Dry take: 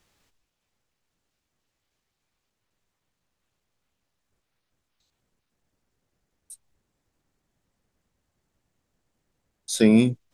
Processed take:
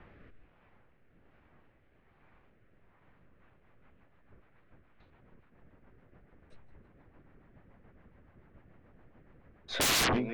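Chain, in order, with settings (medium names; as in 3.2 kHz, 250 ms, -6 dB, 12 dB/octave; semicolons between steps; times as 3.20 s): low-pass 2.1 kHz 24 dB/octave; on a send: thinning echo 162 ms, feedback 46%, high-pass 580 Hz, level -19.5 dB; on the sum: rotary cabinet horn 1.2 Hz, later 7 Hz, at 3.02 s; sine folder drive 18 dB, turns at -21 dBFS; trim -3 dB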